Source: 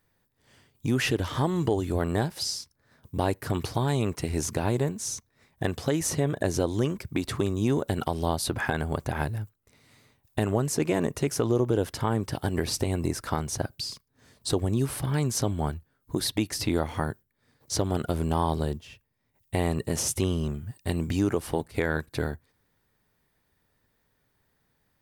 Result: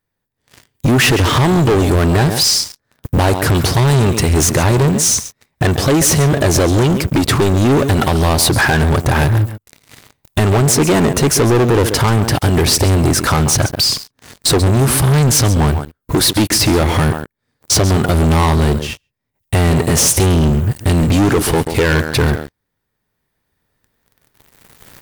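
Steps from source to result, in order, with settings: recorder AGC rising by 6.8 dB/s; delay 136 ms -16 dB; waveshaping leveller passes 5; trim +3.5 dB

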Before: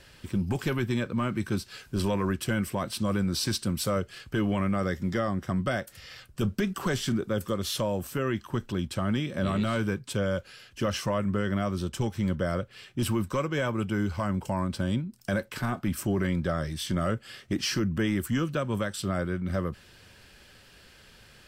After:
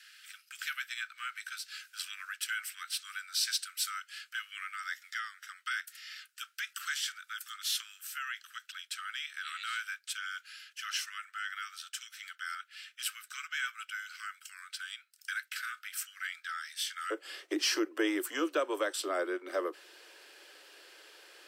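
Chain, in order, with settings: steep high-pass 1.3 kHz 96 dB/octave, from 17.10 s 300 Hz

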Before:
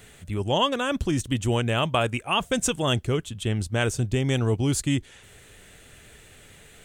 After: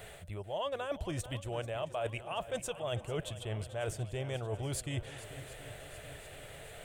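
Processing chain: fifteen-band graphic EQ 250 Hz -12 dB, 630 Hz +12 dB, 6.3 kHz -7 dB; reverse; compression 10:1, threshold -34 dBFS, peak gain reduction 21.5 dB; reverse; shuffle delay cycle 732 ms, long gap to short 1.5:1, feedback 56%, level -15 dB

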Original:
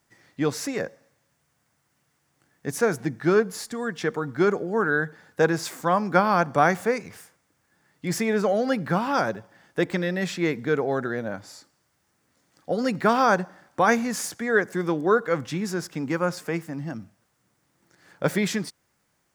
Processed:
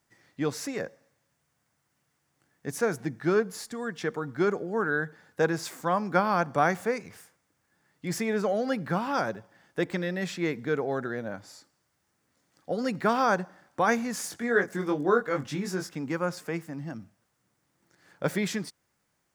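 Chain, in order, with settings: 14.28–15.95 s: doubling 21 ms -4 dB; trim -4.5 dB

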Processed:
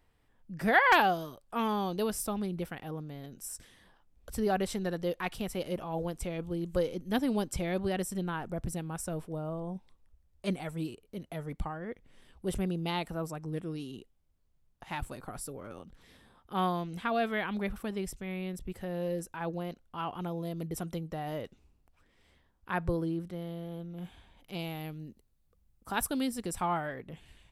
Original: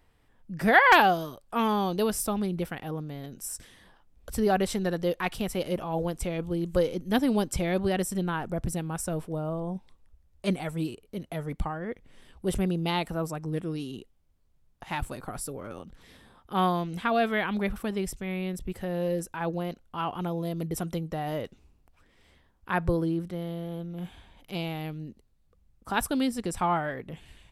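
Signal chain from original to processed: 24.59–26.88 s: treble shelf 9.5 kHz +10 dB; trim -5 dB

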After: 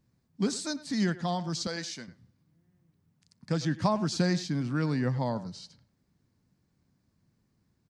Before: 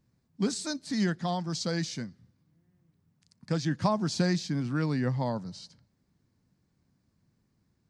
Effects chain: 1.67–2.08 s: high-pass 590 Hz 6 dB/octave; speakerphone echo 100 ms, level -15 dB

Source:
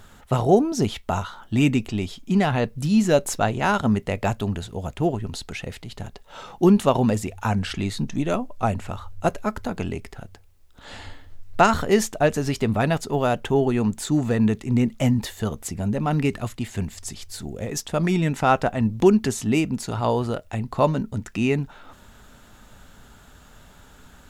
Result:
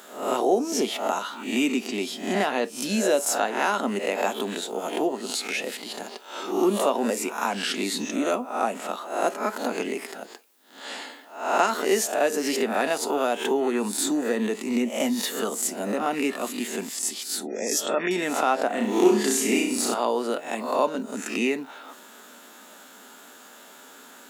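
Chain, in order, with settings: reverse spectral sustain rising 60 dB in 0.48 s; steep high-pass 250 Hz 36 dB/octave; 17.38–18.11 s: spectral gate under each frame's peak -30 dB strong; treble shelf 8.3 kHz +7.5 dB; compression 2:1, threshold -27 dBFS, peak gain reduction 10 dB; 18.67–19.94 s: flutter echo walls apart 5.7 m, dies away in 0.58 s; gated-style reverb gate 80 ms falling, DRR 11.5 dB; trim +2.5 dB

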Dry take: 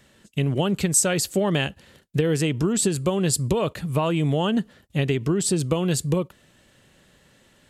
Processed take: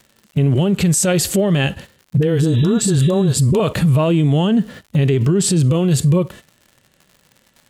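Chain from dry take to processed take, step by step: 2.39–3.27 s: spectral replace 1.7–3.9 kHz after; gate -44 dBFS, range -22 dB; harmonic-percussive split percussive -12 dB; compression, threshold -28 dBFS, peak gain reduction 9 dB; 2.17–3.60 s: phase dispersion highs, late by 42 ms, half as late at 430 Hz; crackle 140 per s -58 dBFS; loudness maximiser +30 dB; trim -7.5 dB

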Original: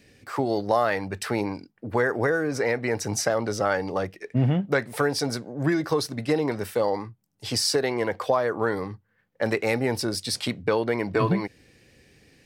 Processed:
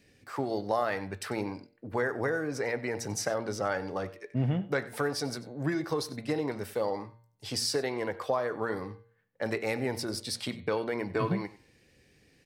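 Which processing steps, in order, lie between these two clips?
de-hum 115.8 Hz, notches 38; on a send: delay 93 ms -18.5 dB; on the sum: trim -6.5 dB

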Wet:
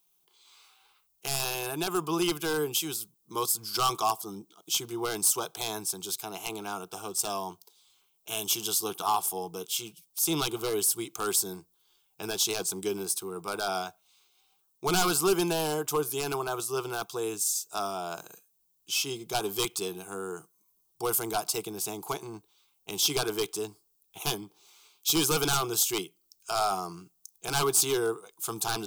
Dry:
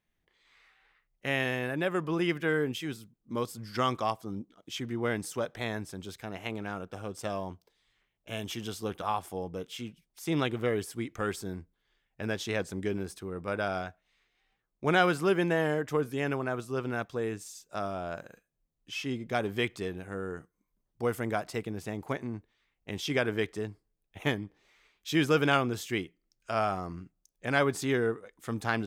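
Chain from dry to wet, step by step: RIAA curve recording; wavefolder -22 dBFS; static phaser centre 370 Hz, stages 8; trim +7 dB

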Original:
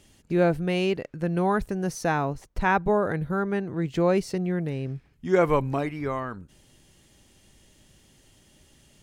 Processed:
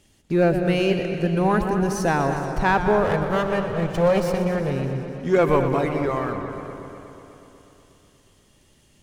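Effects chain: 3.04–4.71 s: comb filter that takes the minimum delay 1.7 ms; waveshaping leveller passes 1; on a send: filtered feedback delay 211 ms, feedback 57%, low-pass 2 kHz, level -9 dB; on the sum: modulated delay 122 ms, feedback 78%, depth 98 cents, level -11 dB

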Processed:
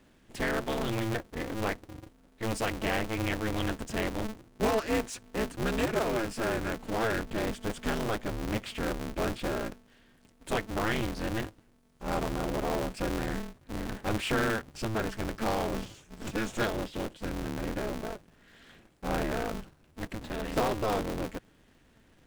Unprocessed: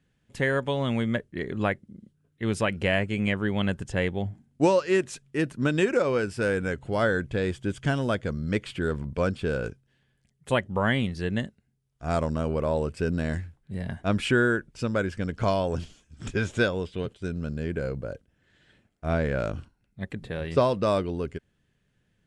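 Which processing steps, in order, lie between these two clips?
power-law waveshaper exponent 0.7; polarity switched at an audio rate 110 Hz; trim -9 dB

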